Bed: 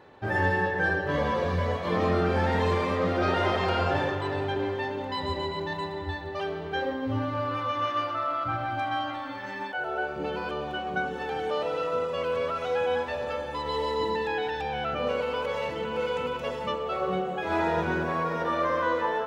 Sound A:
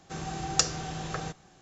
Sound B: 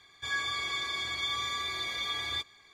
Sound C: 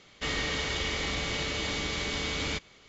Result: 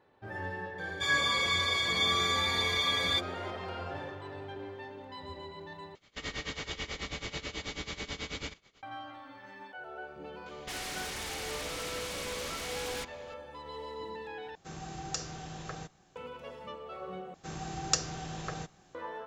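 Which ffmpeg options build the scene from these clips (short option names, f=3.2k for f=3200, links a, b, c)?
-filter_complex "[3:a]asplit=2[a][b];[1:a]asplit=2[c][d];[0:a]volume=-13.5dB[e];[2:a]acontrast=74[f];[a]tremolo=f=9.2:d=0.87[g];[b]aeval=exprs='0.119*sin(PI/2*5.01*val(0)/0.119)':c=same[h];[c]alimiter=level_in=8.5dB:limit=-1dB:release=50:level=0:latency=1[i];[e]asplit=4[j][k][l][m];[j]atrim=end=5.954[n];[g]atrim=end=2.88,asetpts=PTS-STARTPTS,volume=-4dB[o];[k]atrim=start=8.826:end=14.554[p];[i]atrim=end=1.61,asetpts=PTS-STARTPTS,volume=-15.5dB[q];[l]atrim=start=16.156:end=17.344[r];[d]atrim=end=1.61,asetpts=PTS-STARTPTS,volume=-4dB[s];[m]atrim=start=18.946[t];[f]atrim=end=2.73,asetpts=PTS-STARTPTS,volume=-2.5dB,afade=t=in:d=0.004:c=hsin,afade=t=out:st=2.726:d=0.004:c=hsin,adelay=780[u];[h]atrim=end=2.88,asetpts=PTS-STARTPTS,volume=-18dB,afade=t=in:d=0.004:c=hsin,afade=t=out:st=2.876:d=0.004:c=hsin,adelay=10460[v];[n][o]acrossfade=d=0.004:c1=hsin:c2=hsin[w];[w][p]acrossfade=d=0.004:c1=hsin:c2=hsin[x];[x][q]acrossfade=d=0.004:c1=hsin:c2=hsin[y];[y][r]acrossfade=d=0.004:c1=hsin:c2=hsin[z];[z][s]acrossfade=d=0.004:c1=hsin:c2=hsin[aa];[aa][t]acrossfade=d=0.004:c1=hsin:c2=hsin[ab];[ab][u][v]amix=inputs=3:normalize=0"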